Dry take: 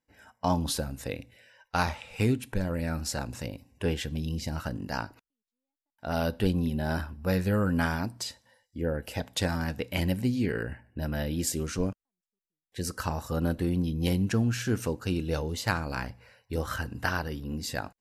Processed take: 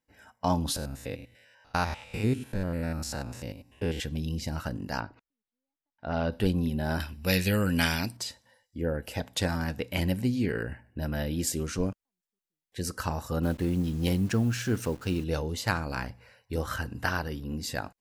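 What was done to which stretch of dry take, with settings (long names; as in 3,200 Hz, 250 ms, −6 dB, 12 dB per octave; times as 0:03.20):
0:00.76–0:04.00: spectrum averaged block by block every 100 ms
0:05.00–0:06.32: high-frequency loss of the air 200 metres
0:07.00–0:08.17: high shelf with overshoot 1,800 Hz +10.5 dB, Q 1.5
0:13.43–0:15.24: hold until the input has moved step −46 dBFS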